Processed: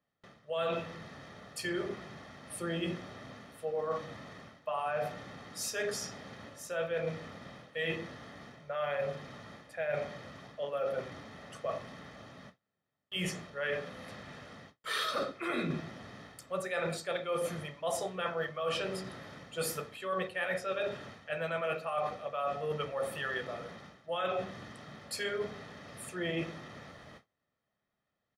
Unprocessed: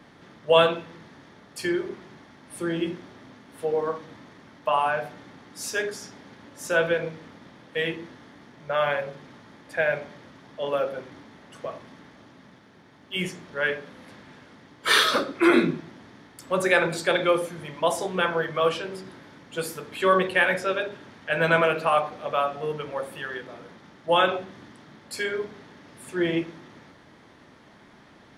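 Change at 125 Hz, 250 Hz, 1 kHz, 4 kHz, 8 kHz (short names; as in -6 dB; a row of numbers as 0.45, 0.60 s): -6.0, -12.0, -11.5, -10.5, -5.5 dB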